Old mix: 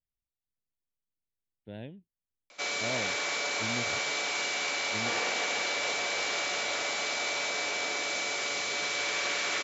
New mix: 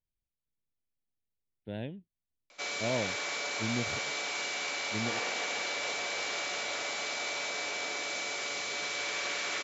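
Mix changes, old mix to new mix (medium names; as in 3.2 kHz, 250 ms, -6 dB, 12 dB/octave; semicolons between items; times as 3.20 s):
speech +4.0 dB; background -3.5 dB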